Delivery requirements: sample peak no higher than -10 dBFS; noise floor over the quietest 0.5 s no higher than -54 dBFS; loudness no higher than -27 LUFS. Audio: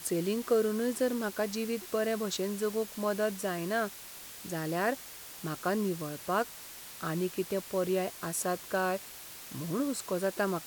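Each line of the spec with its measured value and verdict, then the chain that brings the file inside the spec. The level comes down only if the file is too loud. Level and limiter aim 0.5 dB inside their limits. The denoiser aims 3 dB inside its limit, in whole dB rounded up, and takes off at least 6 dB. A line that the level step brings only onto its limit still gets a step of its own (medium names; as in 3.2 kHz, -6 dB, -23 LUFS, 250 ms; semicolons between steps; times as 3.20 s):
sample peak -16.0 dBFS: pass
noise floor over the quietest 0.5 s -47 dBFS: fail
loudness -32.5 LUFS: pass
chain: noise reduction 10 dB, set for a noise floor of -47 dBFS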